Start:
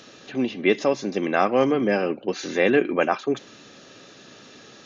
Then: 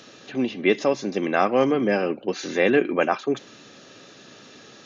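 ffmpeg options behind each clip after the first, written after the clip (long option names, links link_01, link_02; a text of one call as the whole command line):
ffmpeg -i in.wav -af "highpass=59" out.wav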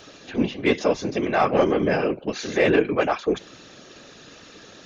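ffmpeg -i in.wav -af "acontrast=86,afftfilt=real='hypot(re,im)*cos(2*PI*random(0))':imag='hypot(re,im)*sin(2*PI*random(1))':win_size=512:overlap=0.75" out.wav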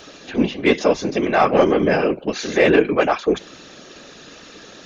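ffmpeg -i in.wav -af "equalizer=frequency=110:width_type=o:width=0.45:gain=-8,volume=4.5dB" out.wav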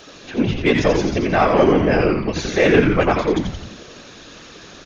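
ffmpeg -i in.wav -filter_complex "[0:a]asplit=9[link_01][link_02][link_03][link_04][link_05][link_06][link_07][link_08][link_09];[link_02]adelay=86,afreqshift=-130,volume=-4dB[link_10];[link_03]adelay=172,afreqshift=-260,volume=-8.6dB[link_11];[link_04]adelay=258,afreqshift=-390,volume=-13.2dB[link_12];[link_05]adelay=344,afreqshift=-520,volume=-17.7dB[link_13];[link_06]adelay=430,afreqshift=-650,volume=-22.3dB[link_14];[link_07]adelay=516,afreqshift=-780,volume=-26.9dB[link_15];[link_08]adelay=602,afreqshift=-910,volume=-31.5dB[link_16];[link_09]adelay=688,afreqshift=-1040,volume=-36.1dB[link_17];[link_01][link_10][link_11][link_12][link_13][link_14][link_15][link_16][link_17]amix=inputs=9:normalize=0,volume=-1dB" out.wav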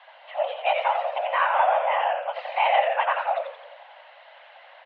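ffmpeg -i in.wav -af "highpass=frequency=180:width_type=q:width=0.5412,highpass=frequency=180:width_type=q:width=1.307,lowpass=frequency=2800:width_type=q:width=0.5176,lowpass=frequency=2800:width_type=q:width=0.7071,lowpass=frequency=2800:width_type=q:width=1.932,afreqshift=360,volume=-6.5dB" out.wav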